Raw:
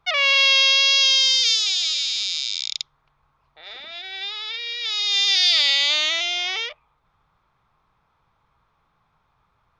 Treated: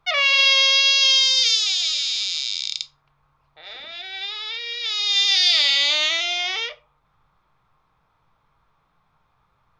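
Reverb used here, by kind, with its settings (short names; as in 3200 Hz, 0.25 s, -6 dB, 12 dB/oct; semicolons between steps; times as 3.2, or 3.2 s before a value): shoebox room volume 130 m³, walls furnished, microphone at 0.5 m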